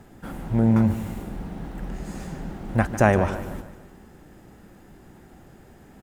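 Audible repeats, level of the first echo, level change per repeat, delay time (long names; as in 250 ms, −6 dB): 4, −13.0 dB, −6.5 dB, 149 ms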